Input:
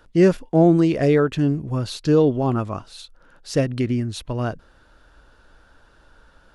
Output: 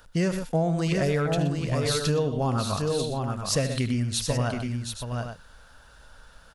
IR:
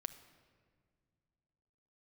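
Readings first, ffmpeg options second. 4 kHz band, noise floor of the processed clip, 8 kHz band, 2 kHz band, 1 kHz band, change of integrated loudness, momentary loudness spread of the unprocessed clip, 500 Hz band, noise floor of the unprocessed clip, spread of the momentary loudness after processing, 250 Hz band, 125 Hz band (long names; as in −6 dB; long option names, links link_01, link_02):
+4.5 dB, −52 dBFS, +8.0 dB, −1.0 dB, −2.0 dB, −6.5 dB, 11 LU, −7.0 dB, −55 dBFS, 8 LU, −8.5 dB, −3.0 dB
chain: -filter_complex "[0:a]equalizer=frequency=330:width=3:gain=-13.5,asplit=2[link_01][link_02];[link_02]aecho=0:1:75|123|723|823:0.211|0.251|0.447|0.251[link_03];[link_01][link_03]amix=inputs=2:normalize=0,acompressor=threshold=-21dB:ratio=6,highshelf=frequency=5200:gain=11.5"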